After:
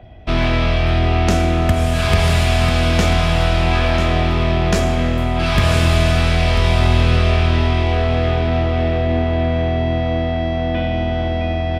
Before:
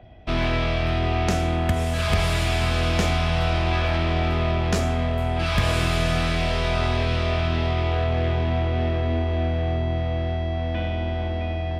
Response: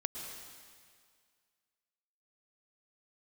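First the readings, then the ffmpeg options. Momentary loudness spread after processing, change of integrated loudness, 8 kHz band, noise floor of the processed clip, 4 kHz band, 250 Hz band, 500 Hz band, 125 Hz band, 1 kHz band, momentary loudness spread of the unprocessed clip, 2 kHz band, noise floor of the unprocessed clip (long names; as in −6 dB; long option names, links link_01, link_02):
5 LU, +6.5 dB, +6.0 dB, −20 dBFS, +6.0 dB, +7.5 dB, +6.5 dB, +6.5 dB, +6.0 dB, 5 LU, +6.0 dB, −26 dBFS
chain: -filter_complex "[0:a]aecho=1:1:993:0.316,asplit=2[link_01][link_02];[1:a]atrim=start_sample=2205,lowshelf=frequency=130:gain=6.5[link_03];[link_02][link_03]afir=irnorm=-1:irlink=0,volume=-6dB[link_04];[link_01][link_04]amix=inputs=2:normalize=0,volume=2dB"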